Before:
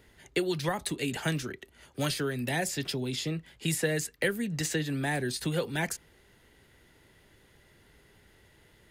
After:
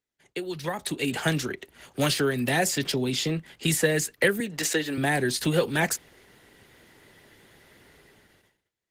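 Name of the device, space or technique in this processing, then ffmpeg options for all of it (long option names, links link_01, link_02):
video call: -filter_complex "[0:a]asettb=1/sr,asplit=3[link_01][link_02][link_03];[link_01]atrim=end=4.404[link_04];[link_02]atrim=start=4.4:end=4.98,asetpts=PTS-STARTPTS,afade=type=in:duration=0.004:curve=qsin,afade=type=out:start_time=0.576:duration=0.004:curve=qsin,highpass=290[link_05];[link_03]atrim=start=4.976[link_06];[link_04][link_05]acrossfade=duration=0.004:curve1=hsin:curve2=qsin[link_07];[link_07][link_06]acrossfade=duration=0.004:curve1=qsin:curve2=hsin,highpass=frequency=150:poles=1,dynaudnorm=framelen=100:gausssize=17:maxgain=13dB,agate=range=-25dB:threshold=-56dB:ratio=16:detection=peak,volume=-4.5dB" -ar 48000 -c:a libopus -b:a 16k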